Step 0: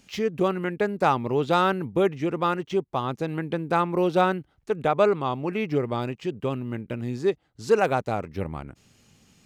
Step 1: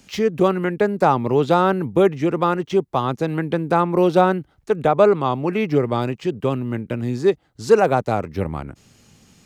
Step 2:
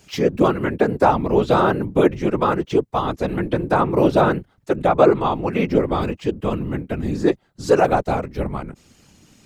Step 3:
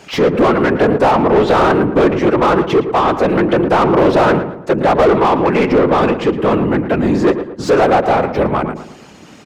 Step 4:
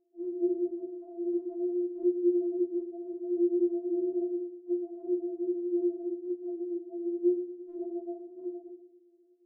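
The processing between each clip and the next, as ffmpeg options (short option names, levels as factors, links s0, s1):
-filter_complex "[0:a]equalizer=f=2700:t=o:w=0.77:g=-2.5,acrossover=split=220|1100[s0][s1][s2];[s2]alimiter=level_in=1.12:limit=0.0631:level=0:latency=1:release=172,volume=0.891[s3];[s0][s1][s3]amix=inputs=3:normalize=0,volume=2.11"
-af "afftfilt=real='hypot(re,im)*cos(2*PI*random(0))':imag='hypot(re,im)*sin(2*PI*random(1))':win_size=512:overlap=0.75,volume=2"
-filter_complex "[0:a]asplit=2[s0][s1];[s1]highpass=f=720:p=1,volume=31.6,asoftclip=type=tanh:threshold=0.891[s2];[s0][s2]amix=inputs=2:normalize=0,lowpass=f=1000:p=1,volume=0.501,asplit=2[s3][s4];[s4]adelay=113,lowpass=f=1900:p=1,volume=0.335,asplit=2[s5][s6];[s6]adelay=113,lowpass=f=1900:p=1,volume=0.42,asplit=2[s7][s8];[s8]adelay=113,lowpass=f=1900:p=1,volume=0.42,asplit=2[s9][s10];[s10]adelay=113,lowpass=f=1900:p=1,volume=0.42,asplit=2[s11][s12];[s12]adelay=113,lowpass=f=1900:p=1,volume=0.42[s13];[s3][s5][s7][s9][s11][s13]amix=inputs=6:normalize=0,volume=0.841"
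-af "asuperpass=centerf=470:order=20:qfactor=1.8,afftfilt=real='re*4*eq(mod(b,16),0)':imag='im*4*eq(mod(b,16),0)':win_size=2048:overlap=0.75,volume=0.422"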